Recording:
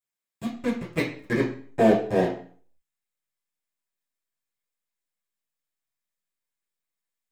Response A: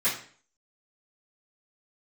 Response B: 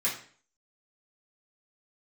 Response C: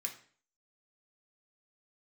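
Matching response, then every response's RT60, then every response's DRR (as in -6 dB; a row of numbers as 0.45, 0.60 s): B; 0.45, 0.45, 0.45 s; -14.5, -8.0, 1.5 dB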